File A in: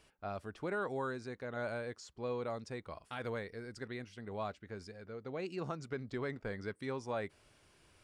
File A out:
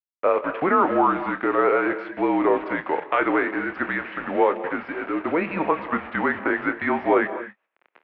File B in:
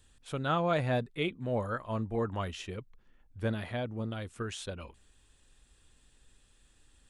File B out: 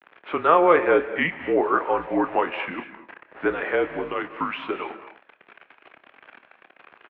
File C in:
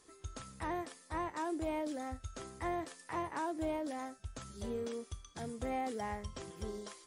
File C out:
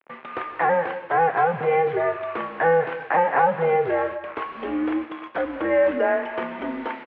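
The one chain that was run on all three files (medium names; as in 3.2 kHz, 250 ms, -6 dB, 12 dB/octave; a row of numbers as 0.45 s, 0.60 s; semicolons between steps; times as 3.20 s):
in parallel at +3 dB: compression 6:1, threshold -42 dBFS; on the sum: word length cut 8-bit, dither none; vibrato 0.64 Hz 83 cents; doubling 27 ms -12 dB; gated-style reverb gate 270 ms rising, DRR 11.5 dB; mistuned SSB -170 Hz 530–2600 Hz; normalise loudness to -23 LUFS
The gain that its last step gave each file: +17.5 dB, +12.5 dB, +16.0 dB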